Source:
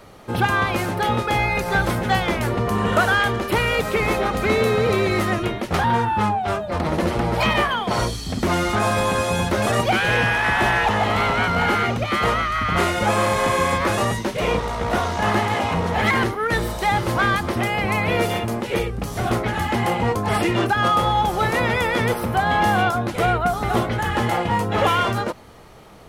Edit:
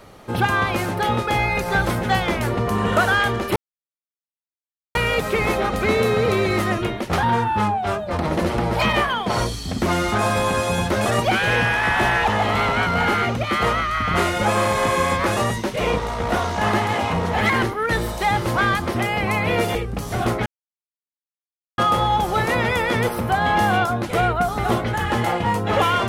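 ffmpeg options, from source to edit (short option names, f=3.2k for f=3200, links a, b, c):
-filter_complex "[0:a]asplit=5[a][b][c][d][e];[a]atrim=end=3.56,asetpts=PTS-STARTPTS,afade=t=out:st=3.556:d=0.004:c=hsin,apad=pad_dur=1.39[f];[b]atrim=start=3.56:end=18.362,asetpts=PTS-STARTPTS,afade=t=in:d=0.004:c=hsin[g];[c]atrim=start=18.798:end=19.51,asetpts=PTS-STARTPTS,afade=t=out:st=0.708:d=0.004:c=hsin[h];[d]atrim=start=19.51:end=20.83,asetpts=PTS-STARTPTS,volume=0[i];[e]atrim=start=20.83,asetpts=PTS-STARTPTS,afade=t=in:d=0.004:c=hsin[j];[f][g]concat=n=2:v=0:a=1[k];[h][i][j]concat=n=3:v=0:a=1[l];[k][l]acrossfade=d=0.004:c1=hsin:c2=hsin"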